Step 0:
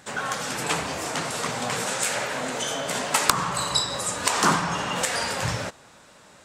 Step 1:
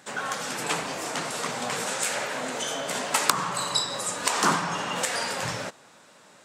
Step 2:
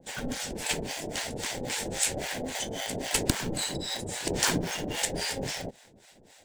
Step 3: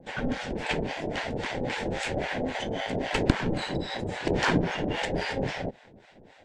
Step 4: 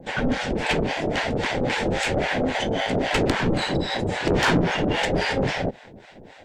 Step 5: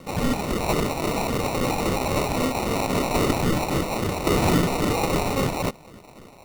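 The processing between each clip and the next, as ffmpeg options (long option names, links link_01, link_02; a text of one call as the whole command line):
ffmpeg -i in.wav -af "highpass=160,volume=-2dB" out.wav
ffmpeg -i in.wav -filter_complex "[0:a]acrossover=split=220|1800[link_01][link_02][link_03];[link_02]acrusher=samples=33:mix=1:aa=0.000001[link_04];[link_01][link_04][link_03]amix=inputs=3:normalize=0,acrossover=split=670[link_05][link_06];[link_05]aeval=exprs='val(0)*(1-1/2+1/2*cos(2*PI*3.7*n/s))':channel_layout=same[link_07];[link_06]aeval=exprs='val(0)*(1-1/2-1/2*cos(2*PI*3.7*n/s))':channel_layout=same[link_08];[link_07][link_08]amix=inputs=2:normalize=0,volume=2.5dB" out.wav
ffmpeg -i in.wav -af "lowpass=2400,volume=5dB" out.wav
ffmpeg -i in.wav -af "asoftclip=type=tanh:threshold=-21.5dB,volume=8dB" out.wav
ffmpeg -i in.wav -af "acrusher=samples=27:mix=1:aa=0.000001" out.wav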